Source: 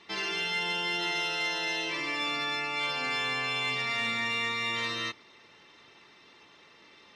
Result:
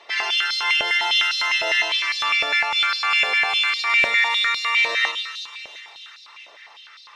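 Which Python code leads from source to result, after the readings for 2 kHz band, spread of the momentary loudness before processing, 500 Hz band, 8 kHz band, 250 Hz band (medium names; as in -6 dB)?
+11.5 dB, 2 LU, +4.5 dB, +8.0 dB, no reading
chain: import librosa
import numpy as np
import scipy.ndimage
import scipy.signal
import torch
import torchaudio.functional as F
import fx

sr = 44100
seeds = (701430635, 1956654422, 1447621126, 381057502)

y = fx.echo_split(x, sr, split_hz=2800.0, low_ms=110, high_ms=349, feedback_pct=52, wet_db=-7)
y = fx.filter_held_highpass(y, sr, hz=9.9, low_hz=610.0, high_hz=4300.0)
y = y * 10.0 ** (5.5 / 20.0)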